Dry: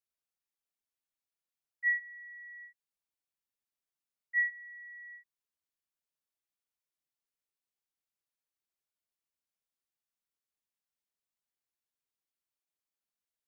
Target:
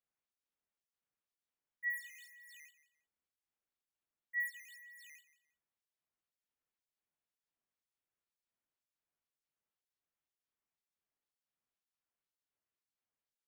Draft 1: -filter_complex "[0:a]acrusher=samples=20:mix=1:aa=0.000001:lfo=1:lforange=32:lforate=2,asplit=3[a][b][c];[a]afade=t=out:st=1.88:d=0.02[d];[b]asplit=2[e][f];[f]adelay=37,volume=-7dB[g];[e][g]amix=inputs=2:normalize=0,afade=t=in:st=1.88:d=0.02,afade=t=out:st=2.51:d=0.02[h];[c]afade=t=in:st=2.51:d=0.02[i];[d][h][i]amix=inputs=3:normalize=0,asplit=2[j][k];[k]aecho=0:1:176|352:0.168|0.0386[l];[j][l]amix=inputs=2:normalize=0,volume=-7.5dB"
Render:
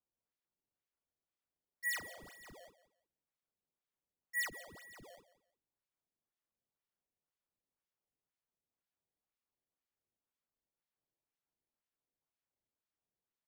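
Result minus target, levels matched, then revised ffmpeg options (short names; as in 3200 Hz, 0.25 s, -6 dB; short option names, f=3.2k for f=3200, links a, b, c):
decimation with a swept rate: distortion +12 dB
-filter_complex "[0:a]acrusher=samples=6:mix=1:aa=0.000001:lfo=1:lforange=9.6:lforate=2,asplit=3[a][b][c];[a]afade=t=out:st=1.88:d=0.02[d];[b]asplit=2[e][f];[f]adelay=37,volume=-7dB[g];[e][g]amix=inputs=2:normalize=0,afade=t=in:st=1.88:d=0.02,afade=t=out:st=2.51:d=0.02[h];[c]afade=t=in:st=2.51:d=0.02[i];[d][h][i]amix=inputs=3:normalize=0,asplit=2[j][k];[k]aecho=0:1:176|352:0.168|0.0386[l];[j][l]amix=inputs=2:normalize=0,volume=-7.5dB"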